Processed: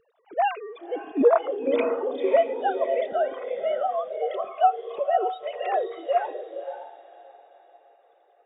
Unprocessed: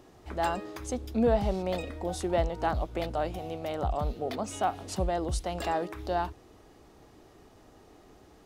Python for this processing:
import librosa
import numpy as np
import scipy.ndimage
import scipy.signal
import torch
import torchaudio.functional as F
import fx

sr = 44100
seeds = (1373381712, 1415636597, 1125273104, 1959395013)

y = fx.sine_speech(x, sr)
y = fx.echo_diffused(y, sr, ms=548, feedback_pct=43, wet_db=-4.5)
y = fx.noise_reduce_blind(y, sr, reduce_db=12)
y = y * 10.0 ** (5.0 / 20.0)